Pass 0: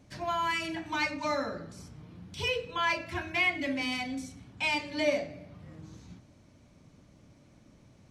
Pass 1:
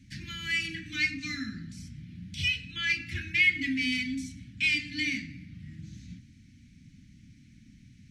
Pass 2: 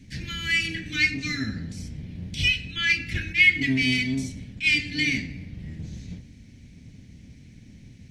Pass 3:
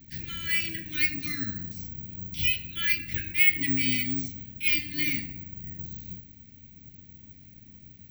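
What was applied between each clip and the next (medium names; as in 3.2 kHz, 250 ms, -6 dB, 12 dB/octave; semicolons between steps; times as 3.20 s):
elliptic band-stop 250–1900 Hz, stop band 50 dB; treble shelf 8.5 kHz -9.5 dB; trim +5.5 dB
octave divider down 1 oct, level -4 dB; attacks held to a fixed rise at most 270 dB/s; trim +6 dB
careless resampling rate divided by 2×, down none, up zero stuff; trim -6 dB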